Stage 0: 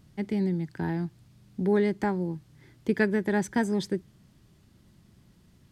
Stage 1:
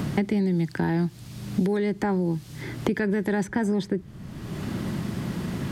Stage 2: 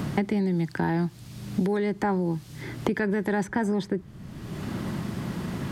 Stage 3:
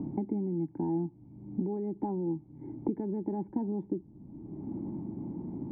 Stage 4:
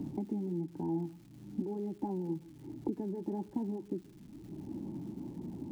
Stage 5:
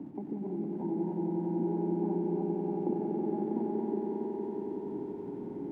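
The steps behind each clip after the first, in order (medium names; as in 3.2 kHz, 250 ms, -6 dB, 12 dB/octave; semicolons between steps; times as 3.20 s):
in parallel at +1 dB: compression, threshold -32 dBFS, peak gain reduction 13 dB; on the sum: peak limiter -19.5 dBFS, peak gain reduction 9.5 dB; three bands compressed up and down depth 100%; trim +3 dB
dynamic bell 1 kHz, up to +5 dB, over -41 dBFS, Q 0.93; trim -2 dB
cascade formant filter u; trim +2.5 dB
crackle 370 per s -49 dBFS; flange 1.1 Hz, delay 0 ms, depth 7.4 ms, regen -49%; reverberation, pre-delay 116 ms, DRR 20.5 dB
backward echo that repeats 161 ms, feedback 64%, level -2.5 dB; three-band isolator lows -15 dB, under 210 Hz, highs -21 dB, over 2.2 kHz; echo with a slow build-up 92 ms, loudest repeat 5, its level -7 dB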